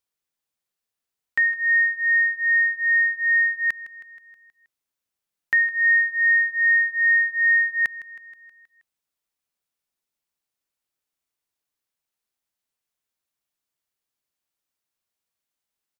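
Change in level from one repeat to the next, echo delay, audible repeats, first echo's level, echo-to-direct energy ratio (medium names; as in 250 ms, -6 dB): -4.5 dB, 159 ms, 5, -17.0 dB, -15.0 dB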